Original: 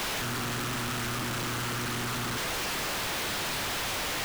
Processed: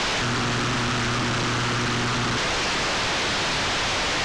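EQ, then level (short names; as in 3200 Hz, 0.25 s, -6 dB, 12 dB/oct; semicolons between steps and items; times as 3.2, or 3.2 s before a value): LPF 6700 Hz 24 dB/oct; +8.5 dB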